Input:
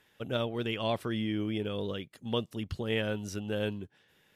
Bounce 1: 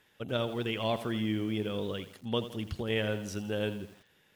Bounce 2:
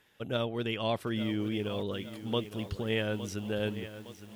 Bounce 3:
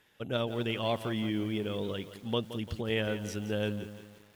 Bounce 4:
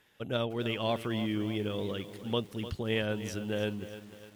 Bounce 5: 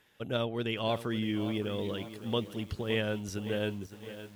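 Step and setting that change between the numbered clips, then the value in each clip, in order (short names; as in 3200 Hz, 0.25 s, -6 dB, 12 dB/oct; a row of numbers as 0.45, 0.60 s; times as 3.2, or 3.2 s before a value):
lo-fi delay, time: 83, 862, 172, 301, 565 ms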